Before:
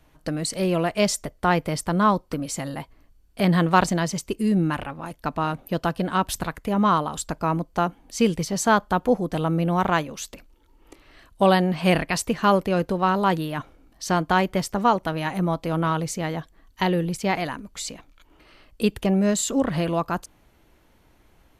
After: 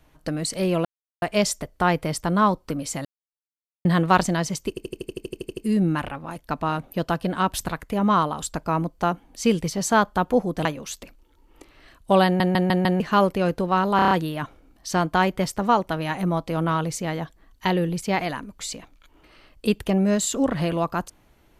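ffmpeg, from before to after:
-filter_complex "[0:a]asplit=26[s0][s1][s2][s3][s4][s5][s6][s7][s8][s9][s10][s11][s12][s13][s14][s15][s16][s17][s18][s19][s20][s21][s22][s23][s24][s25];[s0]atrim=end=0.85,asetpts=PTS-STARTPTS,afade=t=out:st=0.846:d=0.004:c=hsin,apad=pad_dur=0.37[s26];[s1]atrim=start=0.85:end=2.68,asetpts=PTS-STARTPTS,afade=t=in:d=0.004:c=hsin,afade=t=out:st=1.826:d=0.004:c=hsin[s27];[s2]atrim=start=2.68:end=3.48,asetpts=PTS-STARTPTS,volume=0[s28];[s3]atrim=start=3.48:end=4.402,asetpts=PTS-STARTPTS,afade=t=in:d=0.004:c=hsin[s29];[s4]atrim=start=4.318:end=4.402[s30];[s5]atrim=start=4.318:end=4.402[s31];[s6]atrim=start=4.318:end=4.402[s32];[s7]atrim=start=4.318:end=4.402[s33];[s8]atrim=start=4.318:end=4.402[s34];[s9]atrim=start=4.318:end=4.402[s35];[s10]atrim=start=4.318:end=4.402[s36];[s11]atrim=start=4.318:end=4.402[s37];[s12]atrim=start=4.318:end=4.402[s38];[s13]atrim=start=4.318:end=4.402[s39];[s14]atrim=start=4.318:end=9.402[s40];[s15]atrim=start=9.958:end=11.712[s41];[s16]atrim=start=11.558:end=11.712[s42];[s17]atrim=start=11.558:end=11.712[s43];[s18]atrim=start=11.558:end=11.712[s44];[s19]atrim=start=11.558:end=11.712[s45];[s20]atrim=start=12.308:end=13.302[s46];[s21]atrim=start=13.268:end=13.302[s47];[s22]atrim=start=13.268:end=13.302[s48];[s23]atrim=start=13.268:end=13.302[s49];[s24]atrim=start=13.268:end=13.302[s50];[s25]atrim=start=13.268[s51];[s26][s27][s28][s29]concat=n=4:v=0:a=1[s52];[s52][s30]acrossfade=d=0.004:c1=hsin:c2=hsin[s53];[s53][s31]acrossfade=d=0.004:c1=hsin:c2=hsin[s54];[s54][s32]acrossfade=d=0.004:c1=hsin:c2=hsin[s55];[s55][s33]acrossfade=d=0.004:c1=hsin:c2=hsin[s56];[s56][s34]acrossfade=d=0.004:c1=hsin:c2=hsin[s57];[s57][s35]acrossfade=d=0.004:c1=hsin:c2=hsin[s58];[s58][s36]acrossfade=d=0.004:c1=hsin:c2=hsin[s59];[s59][s37]acrossfade=d=0.004:c1=hsin:c2=hsin[s60];[s60][s38]acrossfade=d=0.004:c1=hsin:c2=hsin[s61];[s61][s39]acrossfade=d=0.004:c1=hsin:c2=hsin[s62];[s62][s40]acrossfade=d=0.004:c1=hsin:c2=hsin[s63];[s63][s41]acrossfade=d=0.004:c1=hsin:c2=hsin[s64];[s64][s42]acrossfade=d=0.004:c1=hsin:c2=hsin[s65];[s65][s43]acrossfade=d=0.004:c1=hsin:c2=hsin[s66];[s66][s44]acrossfade=d=0.004:c1=hsin:c2=hsin[s67];[s67][s45]acrossfade=d=0.004:c1=hsin:c2=hsin[s68];[s68][s46]acrossfade=d=0.004:c1=hsin:c2=hsin[s69];[s69][s47]acrossfade=d=0.004:c1=hsin:c2=hsin[s70];[s70][s48]acrossfade=d=0.004:c1=hsin:c2=hsin[s71];[s71][s49]acrossfade=d=0.004:c1=hsin:c2=hsin[s72];[s72][s50]acrossfade=d=0.004:c1=hsin:c2=hsin[s73];[s73][s51]acrossfade=d=0.004:c1=hsin:c2=hsin"

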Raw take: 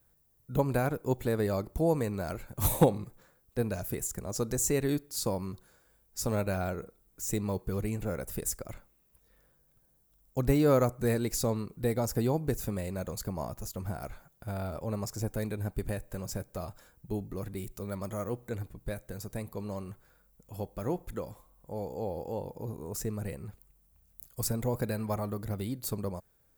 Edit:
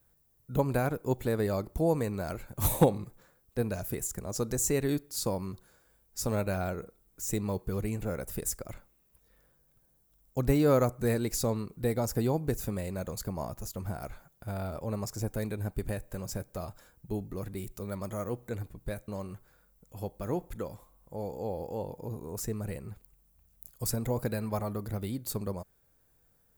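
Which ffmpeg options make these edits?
-filter_complex "[0:a]asplit=2[s0][s1];[s0]atrim=end=19.082[s2];[s1]atrim=start=19.648[s3];[s2][s3]acrossfade=d=0.004:c1=hsin:c2=hsin"

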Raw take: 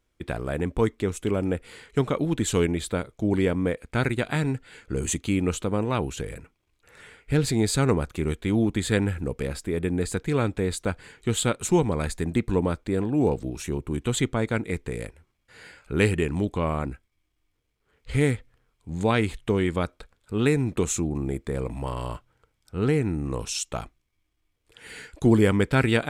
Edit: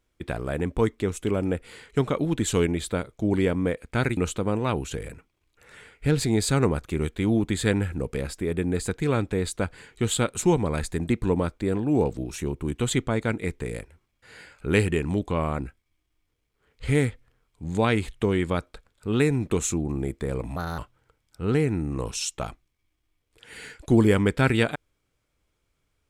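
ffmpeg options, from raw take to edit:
-filter_complex "[0:a]asplit=4[s0][s1][s2][s3];[s0]atrim=end=4.172[s4];[s1]atrim=start=5.428:end=21.824[s5];[s2]atrim=start=21.82:end=22.12,asetpts=PTS-STARTPTS,asetrate=59535,aresample=44100[s6];[s3]atrim=start=22.116[s7];[s4][s5]acrossfade=d=0.004:c1=hsin:c2=hsin[s8];[s8][s6]acrossfade=d=0.004:c1=hsin:c2=hsin[s9];[s9][s7]acrossfade=d=0.004:c1=hsin:c2=hsin"

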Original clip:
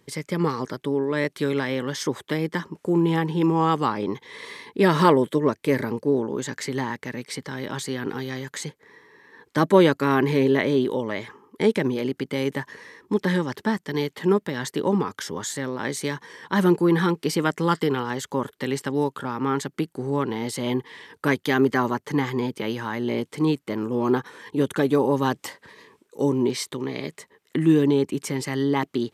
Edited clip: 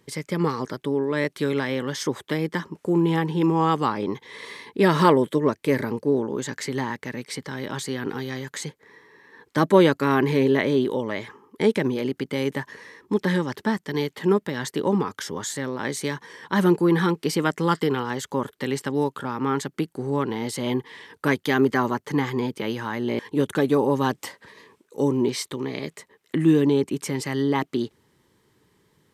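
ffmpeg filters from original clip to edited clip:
-filter_complex "[0:a]asplit=2[s0][s1];[s0]atrim=end=23.192[s2];[s1]atrim=start=24.398[s3];[s2][s3]acrossfade=d=0.004:c1=hsin:c2=hsin"

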